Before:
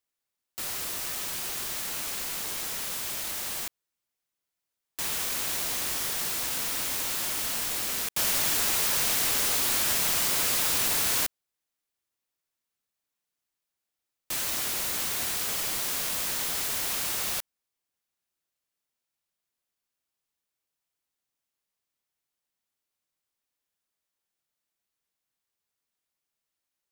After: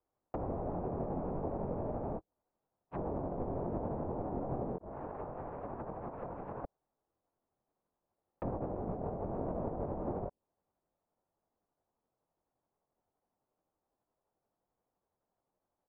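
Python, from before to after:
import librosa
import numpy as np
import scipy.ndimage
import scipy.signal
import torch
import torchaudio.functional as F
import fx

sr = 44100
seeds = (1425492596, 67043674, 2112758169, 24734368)

y = fx.rattle_buzz(x, sr, strikes_db=-54.0, level_db=-25.0)
y = fx.ladder_lowpass(y, sr, hz=1000.0, resonance_pct=30)
y = fx.doubler(y, sr, ms=22.0, db=-7.0)
y = fx.over_compress(y, sr, threshold_db=-49.0, ratio=-0.5)
y = fx.stretch_grains(y, sr, factor=0.59, grain_ms=171.0)
y = fx.vibrato(y, sr, rate_hz=7.3, depth_cents=64.0)
y = fx.env_lowpass_down(y, sr, base_hz=570.0, full_db=-51.0)
y = F.gain(torch.from_numpy(y), 15.0).numpy()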